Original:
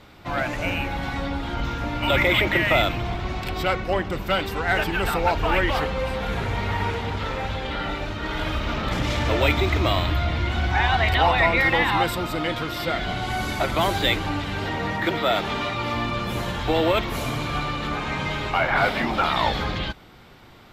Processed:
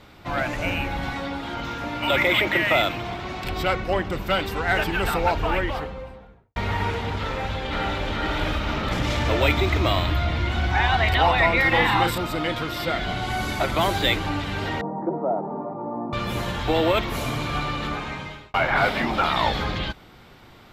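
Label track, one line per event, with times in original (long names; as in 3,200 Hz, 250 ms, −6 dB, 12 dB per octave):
1.130000	3.440000	high-pass filter 200 Hz 6 dB per octave
5.160000	6.560000	fade out and dull
7.300000	8.130000	delay throw 420 ms, feedback 45%, level −1.5 dB
11.680000	12.180000	double-tracking delay 35 ms −5 dB
14.810000	16.130000	elliptic band-pass filter 160–900 Hz, stop band 50 dB
17.830000	18.540000	fade out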